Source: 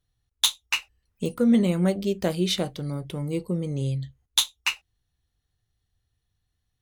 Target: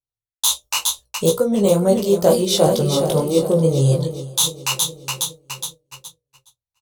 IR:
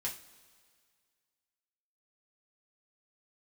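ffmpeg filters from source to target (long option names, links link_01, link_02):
-filter_complex "[0:a]asplit=2[link_01][link_02];[link_02]adelay=25,volume=-12dB[link_03];[link_01][link_03]amix=inputs=2:normalize=0,flanger=delay=15.5:depth=4.2:speed=2.1,aecho=1:1:416|832|1248|1664|2080|2496:0.266|0.138|0.0719|0.0374|0.0195|0.0101,acontrast=80,agate=range=-33dB:threshold=-39dB:ratio=3:detection=peak,bass=frequency=250:gain=-1,treble=frequency=4000:gain=9,bandreject=frequency=60:width_type=h:width=6,bandreject=frequency=120:width_type=h:width=6,bandreject=frequency=180:width_type=h:width=6,bandreject=frequency=240:width_type=h:width=6,bandreject=frequency=300:width_type=h:width=6,bandreject=frequency=360:width_type=h:width=6,bandreject=frequency=420:width_type=h:width=6,bandreject=frequency=480:width_type=h:width=6,bandreject=frequency=540:width_type=h:width=6,bandreject=frequency=600:width_type=h:width=6,areverse,acompressor=threshold=-23dB:ratio=6,areverse,equalizer=frequency=125:width_type=o:width=1:gain=6,equalizer=frequency=250:width_type=o:width=1:gain=-6,equalizer=frequency=500:width_type=o:width=1:gain=10,equalizer=frequency=1000:width_type=o:width=1:gain=7,equalizer=frequency=2000:width_type=o:width=1:gain=-11,equalizer=frequency=16000:width_type=o:width=1:gain=3,volume=7dB"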